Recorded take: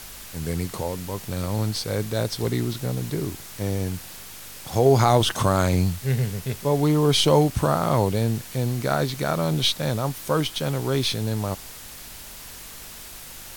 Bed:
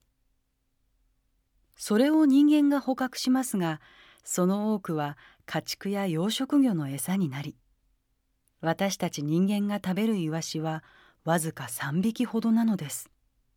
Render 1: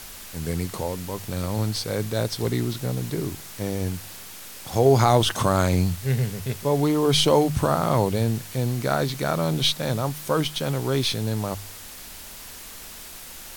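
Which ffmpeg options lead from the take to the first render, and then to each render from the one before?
-af "bandreject=f=50:t=h:w=4,bandreject=f=100:t=h:w=4,bandreject=f=150:t=h:w=4"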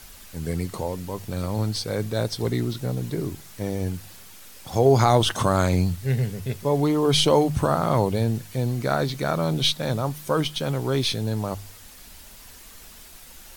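-af "afftdn=nr=7:nf=-41"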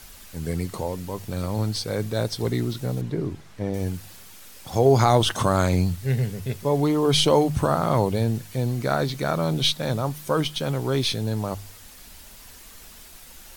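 -filter_complex "[0:a]asettb=1/sr,asplit=3[s0][s1][s2];[s0]atrim=end=3.014[s3];[s1]atrim=start=3.01:end=3.74,asetpts=PTS-STARTPTS,afade=t=in:d=0.004:c=qsin,afade=t=out:st=0.726:d=0.004:c=qsin,aemphasis=mode=reproduction:type=75fm[s4];[s2]atrim=start=3.736[s5];[s3][s4]acrossfade=d=0.004:c1=hsin:c2=qsin[s6];[s6][s5]acrossfade=d=0.004:c1=qsin:c2=hsin"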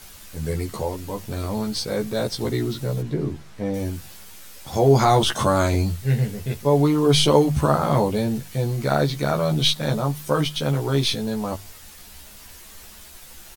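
-filter_complex "[0:a]asplit=2[s0][s1];[s1]adelay=14,volume=0.75[s2];[s0][s2]amix=inputs=2:normalize=0"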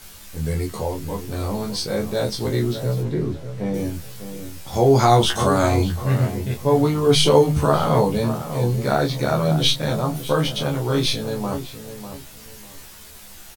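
-filter_complex "[0:a]asplit=2[s0][s1];[s1]adelay=25,volume=0.562[s2];[s0][s2]amix=inputs=2:normalize=0,asplit=2[s3][s4];[s4]adelay=598,lowpass=f=1400:p=1,volume=0.316,asplit=2[s5][s6];[s6]adelay=598,lowpass=f=1400:p=1,volume=0.28,asplit=2[s7][s8];[s8]adelay=598,lowpass=f=1400:p=1,volume=0.28[s9];[s3][s5][s7][s9]amix=inputs=4:normalize=0"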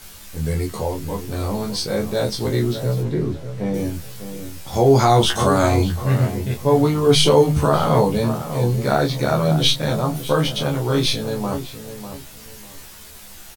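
-af "volume=1.19,alimiter=limit=0.708:level=0:latency=1"

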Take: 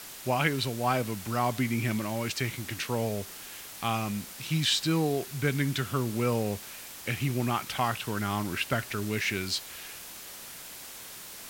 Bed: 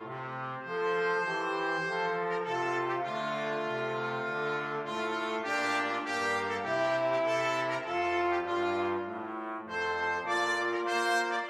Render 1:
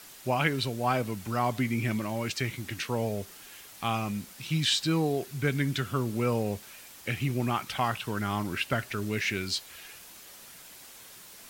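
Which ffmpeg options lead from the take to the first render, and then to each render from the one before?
-af "afftdn=nr=6:nf=-44"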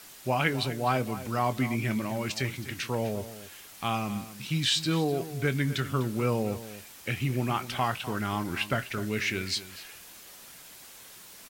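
-filter_complex "[0:a]asplit=2[s0][s1];[s1]adelay=23,volume=0.2[s2];[s0][s2]amix=inputs=2:normalize=0,asplit=2[s3][s4];[s4]adelay=250.7,volume=0.2,highshelf=f=4000:g=-5.64[s5];[s3][s5]amix=inputs=2:normalize=0"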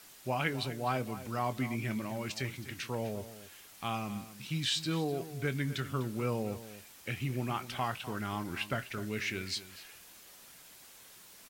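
-af "volume=0.501"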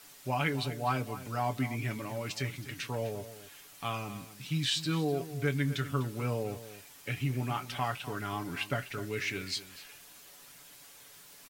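-af "aecho=1:1:7:0.55"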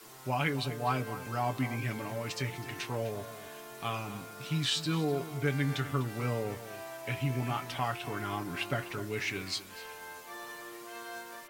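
-filter_complex "[1:a]volume=0.178[s0];[0:a][s0]amix=inputs=2:normalize=0"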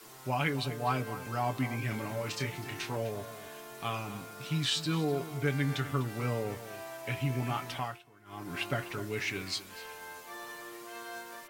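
-filter_complex "[0:a]asettb=1/sr,asplit=3[s0][s1][s2];[s0]atrim=end=1.894[s3];[s1]atrim=start=1.89:end=2.97,asetpts=PTS-STARTPTS,afade=t=in:d=0.004:c=qsin,afade=t=out:st=1.076:d=0.004:c=qsin,asplit=2[s4][s5];[s5]adelay=28,volume=0.447[s6];[s4][s6]amix=inputs=2:normalize=0,atrim=end_sample=47628[s7];[s2]atrim=start=2.966[s8];[s3][s7]acrossfade=d=0.004:c1=hsin:c2=qsin[s9];[s9][s8]acrossfade=d=0.004:c1=qsin:c2=hsin,asplit=3[s10][s11][s12];[s10]atrim=end=8.04,asetpts=PTS-STARTPTS,afade=t=out:st=7.72:d=0.32:silence=0.0707946[s13];[s11]atrim=start=8.04:end=8.25,asetpts=PTS-STARTPTS,volume=0.0708[s14];[s12]atrim=start=8.25,asetpts=PTS-STARTPTS,afade=t=in:d=0.32:silence=0.0707946[s15];[s13][s14][s15]concat=n=3:v=0:a=1"

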